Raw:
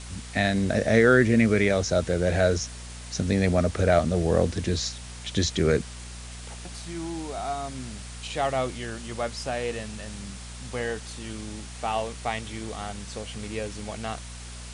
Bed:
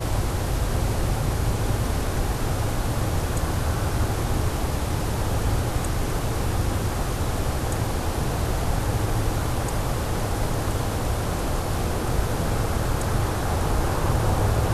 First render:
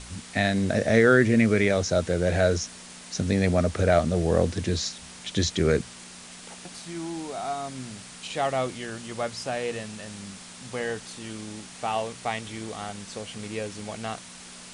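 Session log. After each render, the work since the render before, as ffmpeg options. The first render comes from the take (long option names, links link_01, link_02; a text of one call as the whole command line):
ffmpeg -i in.wav -af "bandreject=frequency=60:width_type=h:width=4,bandreject=frequency=120:width_type=h:width=4" out.wav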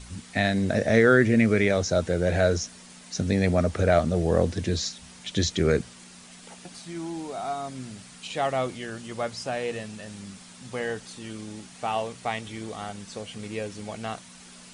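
ffmpeg -i in.wav -af "afftdn=noise_reduction=6:noise_floor=-45" out.wav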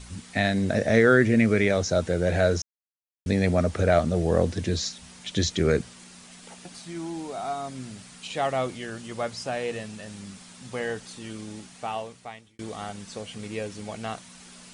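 ffmpeg -i in.wav -filter_complex "[0:a]asplit=4[link_01][link_02][link_03][link_04];[link_01]atrim=end=2.62,asetpts=PTS-STARTPTS,afade=type=out:start_time=2.616:duration=0.004:curve=hsin[link_05];[link_02]atrim=start=2.62:end=3.26,asetpts=PTS-STARTPTS,volume=0[link_06];[link_03]atrim=start=3.26:end=12.59,asetpts=PTS-STARTPTS,afade=type=in:duration=0.004:curve=hsin,afade=type=out:start_time=8.31:duration=1.02[link_07];[link_04]atrim=start=12.59,asetpts=PTS-STARTPTS,afade=type=in:duration=0.004:curve=hsin[link_08];[link_05][link_06][link_07][link_08]concat=n=4:v=0:a=1" out.wav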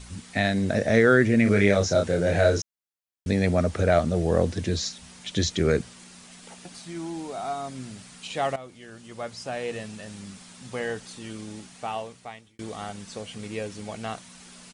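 ffmpeg -i in.wav -filter_complex "[0:a]asplit=3[link_01][link_02][link_03];[link_01]afade=type=out:start_time=1.45:duration=0.02[link_04];[link_02]asplit=2[link_05][link_06];[link_06]adelay=30,volume=-3.5dB[link_07];[link_05][link_07]amix=inputs=2:normalize=0,afade=type=in:start_time=1.45:duration=0.02,afade=type=out:start_time=2.6:duration=0.02[link_08];[link_03]afade=type=in:start_time=2.6:duration=0.02[link_09];[link_04][link_08][link_09]amix=inputs=3:normalize=0,asplit=2[link_10][link_11];[link_10]atrim=end=8.56,asetpts=PTS-STARTPTS,afade=type=out:start_time=8.556:duration=0.004:curve=hsin:silence=0.149624[link_12];[link_11]atrim=start=8.56,asetpts=PTS-STARTPTS,afade=type=in:duration=1.3:silence=0.149624[link_13];[link_12][link_13]concat=n=2:v=0:a=1" out.wav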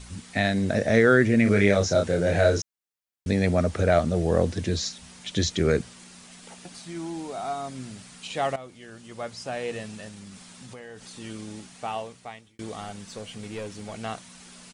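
ffmpeg -i in.wav -filter_complex "[0:a]asettb=1/sr,asplit=3[link_01][link_02][link_03];[link_01]atrim=end=10.084[link_04];[link_02]atrim=start=10.08:end=11.17,asetpts=PTS-STARTPTS,afade=type=in:duration=0.004:curve=qsin,afade=type=out:start_time=1.086:duration=0.004:curve=qsin,acompressor=threshold=-39dB:ratio=6:attack=3.2:release=140:knee=1:detection=peak[link_05];[link_03]atrim=start=11.166[link_06];[link_04][link_05]acrossfade=duration=0.004:curve1=hsin:curve2=qsin[link_07];[link_07][link_06]acrossfade=duration=0.004:curve1=qsin:curve2=hsin,asettb=1/sr,asplit=3[link_08][link_09][link_10];[link_08]atrim=end=12.804[link_11];[link_09]atrim=start=12.8:end=13.95,asetpts=PTS-STARTPTS,afade=type=in:duration=0.004:curve=qsin,afade=type=out:start_time=1.146:duration=0.004:curve=qsin,aeval=exprs='(tanh(25.1*val(0)+0.2)-tanh(0.2))/25.1':channel_layout=same[link_12];[link_10]atrim=start=13.946[link_13];[link_11][link_12]acrossfade=duration=0.004:curve1=hsin:curve2=qsin[link_14];[link_14][link_13]acrossfade=duration=0.004:curve1=qsin:curve2=hsin" out.wav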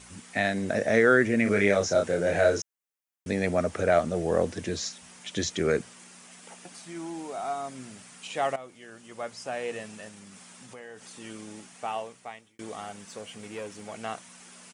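ffmpeg -i in.wav -af "highpass=frequency=330:poles=1,equalizer=frequency=4100:width=2:gain=-6.5" out.wav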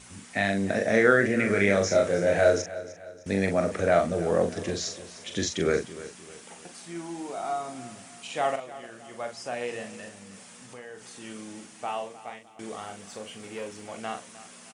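ffmpeg -i in.wav -filter_complex "[0:a]asplit=2[link_01][link_02];[link_02]adelay=41,volume=-6.5dB[link_03];[link_01][link_03]amix=inputs=2:normalize=0,aecho=1:1:305|610|915|1220:0.158|0.0666|0.028|0.0117" out.wav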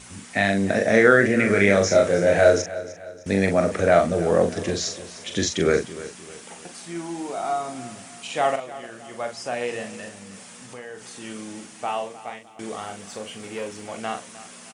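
ffmpeg -i in.wav -af "volume=5dB,alimiter=limit=-2dB:level=0:latency=1" out.wav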